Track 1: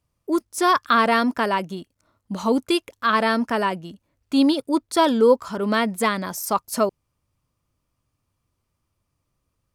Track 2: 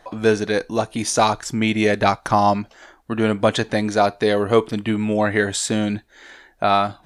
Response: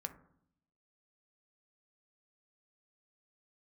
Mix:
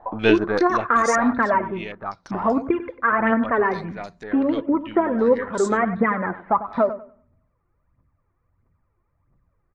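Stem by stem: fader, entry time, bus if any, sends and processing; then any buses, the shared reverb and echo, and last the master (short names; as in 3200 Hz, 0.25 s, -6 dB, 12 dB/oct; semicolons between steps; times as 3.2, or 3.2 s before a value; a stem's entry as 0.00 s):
+1.0 dB, 0.00 s, send -6 dB, echo send -11 dB, phaser 1.5 Hz, delay 2.9 ms, feedback 64%; compressor, threshold -19 dBFS, peak gain reduction 13.5 dB; steep low-pass 2100 Hz 48 dB/oct
0.68 s 0 dB -> 1.04 s -10 dB -> 6.2 s -10 dB -> 6.5 s -22 dB, 0.00 s, no send, no echo send, half-wave gain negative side -3 dB; stepped low-pass 5.2 Hz 900–6900 Hz; auto duck -8 dB, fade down 1.95 s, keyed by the first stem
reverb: on, RT60 0.65 s, pre-delay 3 ms
echo: feedback echo 97 ms, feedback 24%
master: dry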